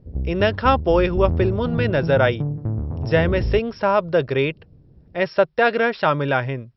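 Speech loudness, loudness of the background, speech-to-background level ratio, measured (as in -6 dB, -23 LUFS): -20.5 LUFS, -26.5 LUFS, 6.0 dB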